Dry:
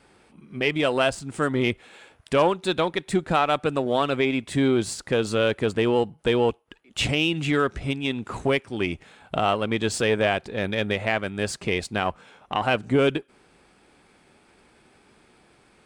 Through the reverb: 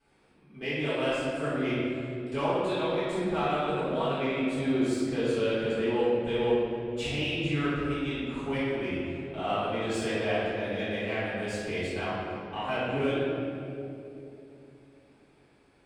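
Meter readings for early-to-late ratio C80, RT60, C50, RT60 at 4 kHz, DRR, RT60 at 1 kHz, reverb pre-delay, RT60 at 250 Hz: -1.5 dB, 2.9 s, -3.5 dB, 1.6 s, -15.5 dB, 2.4 s, 3 ms, 3.8 s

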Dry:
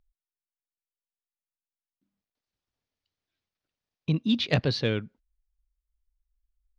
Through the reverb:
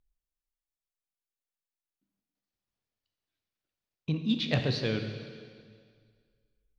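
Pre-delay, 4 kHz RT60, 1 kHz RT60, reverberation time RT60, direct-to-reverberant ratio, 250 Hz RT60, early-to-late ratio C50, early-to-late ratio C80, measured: 11 ms, 1.9 s, 1.9 s, 2.0 s, 5.0 dB, 2.0 s, 6.5 dB, 8.0 dB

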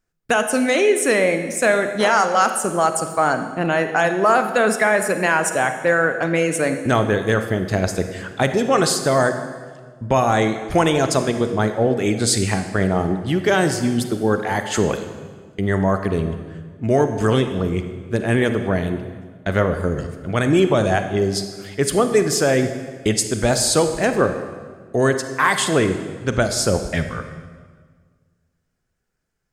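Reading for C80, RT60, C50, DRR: 10.0 dB, 1.6 s, 8.5 dB, 7.5 dB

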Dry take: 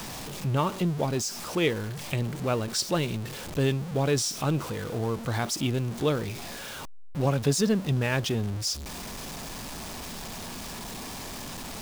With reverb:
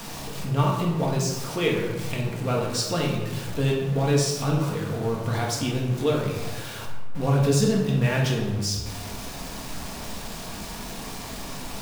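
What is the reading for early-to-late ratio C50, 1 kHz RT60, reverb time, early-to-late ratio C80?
2.5 dB, 1.3 s, 1.2 s, 5.5 dB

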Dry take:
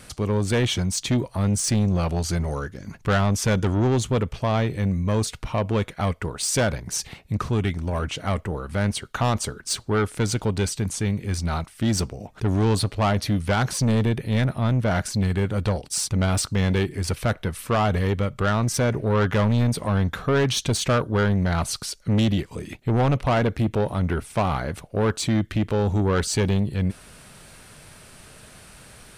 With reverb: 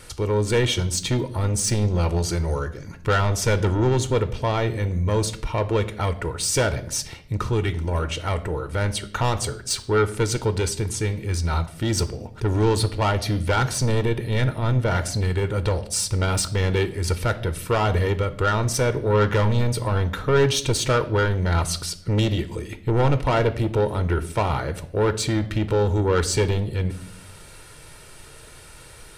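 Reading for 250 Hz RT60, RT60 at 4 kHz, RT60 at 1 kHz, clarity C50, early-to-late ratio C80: 1.0 s, 0.55 s, 0.50 s, 15.5 dB, 18.5 dB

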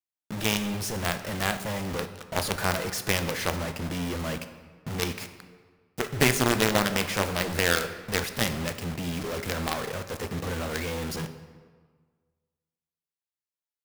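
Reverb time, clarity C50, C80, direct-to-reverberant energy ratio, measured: 1.6 s, 11.0 dB, 12.0 dB, 9.0 dB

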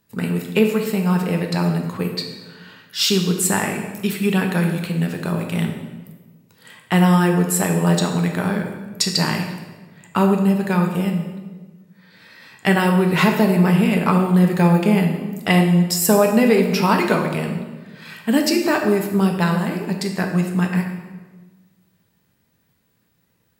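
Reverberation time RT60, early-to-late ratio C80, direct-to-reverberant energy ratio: 1.3 s, 7.5 dB, 2.5 dB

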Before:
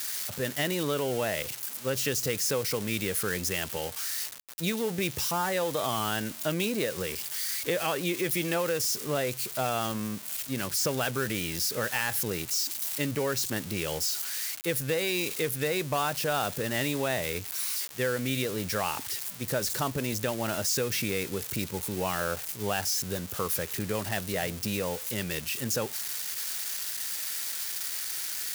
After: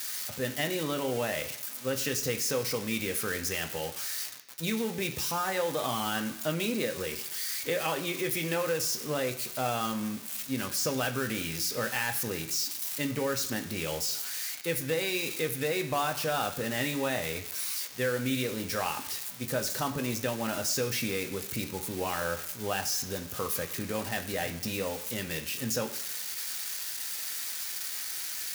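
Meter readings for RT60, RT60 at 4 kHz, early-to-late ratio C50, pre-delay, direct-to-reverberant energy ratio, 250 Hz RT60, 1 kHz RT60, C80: 1.0 s, 0.95 s, 12.0 dB, 3 ms, 4.0 dB, 0.90 s, 1.0 s, 14.0 dB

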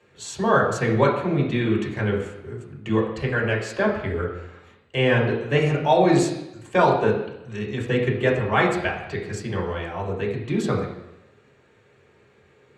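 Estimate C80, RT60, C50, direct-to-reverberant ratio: 8.0 dB, 0.90 s, 6.0 dB, -4.5 dB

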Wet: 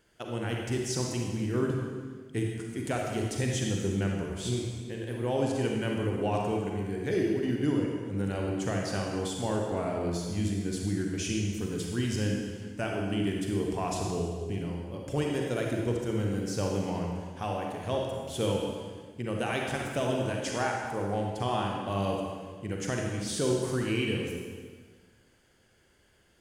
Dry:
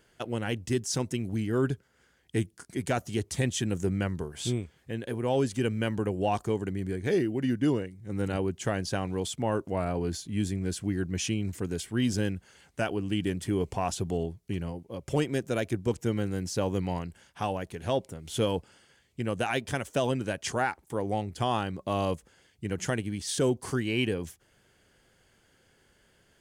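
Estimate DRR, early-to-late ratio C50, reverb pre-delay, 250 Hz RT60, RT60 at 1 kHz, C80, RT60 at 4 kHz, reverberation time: -0.5 dB, 0.5 dB, 36 ms, 1.7 s, 1.5 s, 2.5 dB, 1.4 s, 1.5 s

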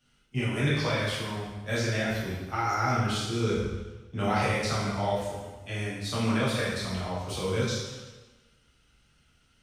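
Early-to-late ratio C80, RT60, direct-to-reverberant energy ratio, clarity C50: 2.5 dB, 1.2 s, -8.0 dB, 0.0 dB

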